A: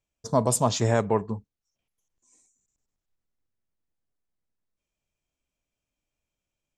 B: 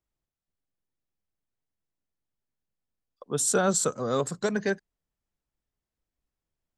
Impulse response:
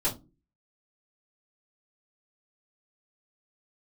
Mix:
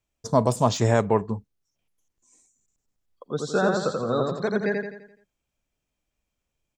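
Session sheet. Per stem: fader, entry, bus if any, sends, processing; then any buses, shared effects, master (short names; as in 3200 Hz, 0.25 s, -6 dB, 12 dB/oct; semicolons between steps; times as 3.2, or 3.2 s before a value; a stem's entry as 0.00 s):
+2.5 dB, 0.00 s, no send, no echo send, de-esser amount 65%
+1.0 dB, 0.00 s, no send, echo send -3.5 dB, spectral gate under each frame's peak -30 dB strong; LPF 4500 Hz 24 dB/oct; shaped vibrato saw up 3.8 Hz, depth 100 cents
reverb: off
echo: feedback echo 85 ms, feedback 45%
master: dry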